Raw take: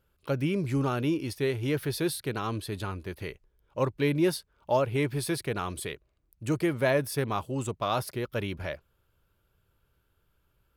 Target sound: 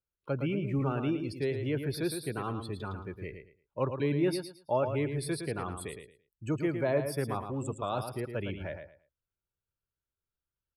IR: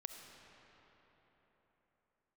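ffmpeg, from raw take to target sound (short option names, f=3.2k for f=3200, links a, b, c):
-filter_complex "[0:a]afftdn=nr=21:nf=-40,acrossover=split=300|950|6100[a][b][c][d];[c]alimiter=level_in=5dB:limit=-24dB:level=0:latency=1,volume=-5dB[e];[a][b][e][d]amix=inputs=4:normalize=0,aecho=1:1:111|222|333:0.422|0.0928|0.0204,volume=-3.5dB"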